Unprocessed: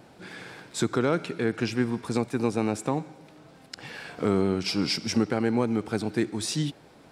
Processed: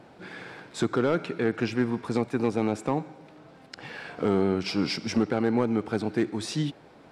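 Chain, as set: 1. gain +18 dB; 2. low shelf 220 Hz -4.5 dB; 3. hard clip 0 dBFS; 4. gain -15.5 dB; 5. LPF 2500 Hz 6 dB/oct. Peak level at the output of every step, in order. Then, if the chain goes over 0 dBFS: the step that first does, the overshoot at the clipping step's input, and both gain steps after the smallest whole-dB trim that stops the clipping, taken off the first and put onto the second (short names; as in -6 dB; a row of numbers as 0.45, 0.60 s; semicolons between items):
+5.5, +5.0, 0.0, -15.5, -15.5 dBFS; step 1, 5.0 dB; step 1 +13 dB, step 4 -10.5 dB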